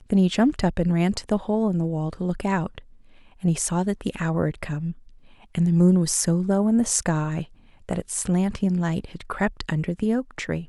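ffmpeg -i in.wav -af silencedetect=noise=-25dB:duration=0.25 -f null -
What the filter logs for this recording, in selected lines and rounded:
silence_start: 2.78
silence_end: 3.44 | silence_duration: 0.66
silence_start: 4.91
silence_end: 5.55 | silence_duration: 0.64
silence_start: 7.42
silence_end: 7.89 | silence_duration: 0.47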